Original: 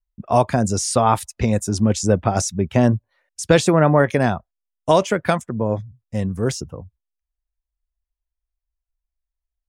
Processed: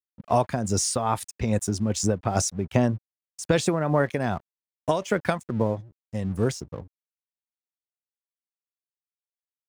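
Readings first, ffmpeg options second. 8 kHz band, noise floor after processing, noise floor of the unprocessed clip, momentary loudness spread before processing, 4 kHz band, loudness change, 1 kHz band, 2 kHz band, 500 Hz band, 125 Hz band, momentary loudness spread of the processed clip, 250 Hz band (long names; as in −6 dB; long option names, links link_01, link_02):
−3.0 dB, below −85 dBFS, −84 dBFS, 13 LU, −5.0 dB, −6.5 dB, −7.5 dB, −6.5 dB, −7.0 dB, −6.5 dB, 11 LU, −6.5 dB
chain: -af "aeval=exprs='sgn(val(0))*max(abs(val(0))-0.00668,0)':channel_layout=same,acompressor=threshold=-16dB:ratio=6,tremolo=f=2.5:d=0.51"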